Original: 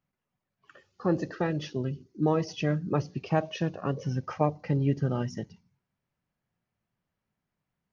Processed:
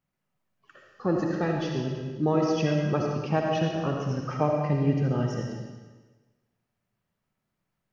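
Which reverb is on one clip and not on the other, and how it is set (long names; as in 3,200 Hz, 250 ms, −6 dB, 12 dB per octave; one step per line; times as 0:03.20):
comb and all-pass reverb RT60 1.3 s, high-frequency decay 1×, pre-delay 30 ms, DRR 0 dB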